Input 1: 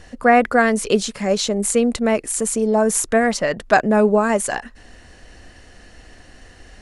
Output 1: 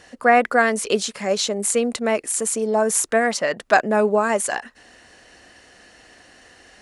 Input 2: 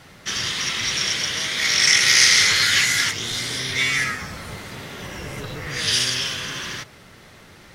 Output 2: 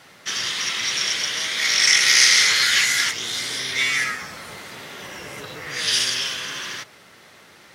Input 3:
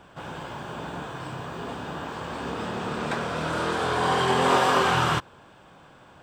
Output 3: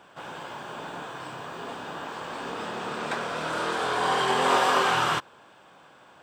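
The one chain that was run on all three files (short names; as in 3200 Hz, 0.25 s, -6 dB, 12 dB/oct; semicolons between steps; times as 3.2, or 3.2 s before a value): HPF 410 Hz 6 dB/oct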